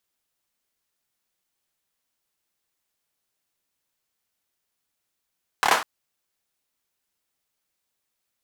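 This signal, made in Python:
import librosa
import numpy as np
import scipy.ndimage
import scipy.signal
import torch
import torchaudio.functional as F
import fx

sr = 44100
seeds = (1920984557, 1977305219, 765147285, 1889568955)

y = fx.drum_clap(sr, seeds[0], length_s=0.2, bursts=4, spacing_ms=27, hz=1000.0, decay_s=0.38)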